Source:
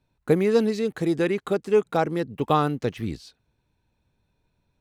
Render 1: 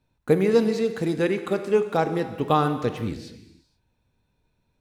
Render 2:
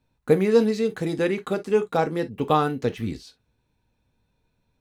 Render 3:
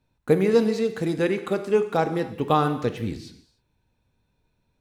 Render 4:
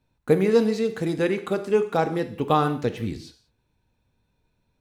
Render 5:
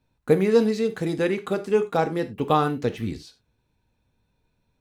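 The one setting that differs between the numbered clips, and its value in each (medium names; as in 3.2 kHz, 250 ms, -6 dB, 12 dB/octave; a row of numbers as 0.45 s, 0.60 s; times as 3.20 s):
gated-style reverb, gate: 510 ms, 80 ms, 330 ms, 220 ms, 120 ms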